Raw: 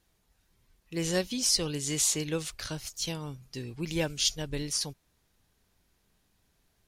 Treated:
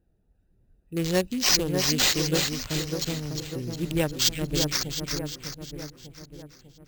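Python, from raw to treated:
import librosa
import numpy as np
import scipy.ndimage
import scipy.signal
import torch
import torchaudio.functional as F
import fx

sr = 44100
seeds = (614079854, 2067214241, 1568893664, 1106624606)

y = fx.wiener(x, sr, points=41)
y = fx.echo_split(y, sr, split_hz=1800.0, low_ms=598, high_ms=356, feedback_pct=52, wet_db=-5)
y = fx.sample_hold(y, sr, seeds[0], rate_hz=11000.0, jitter_pct=0)
y = y * 10.0 ** (5.5 / 20.0)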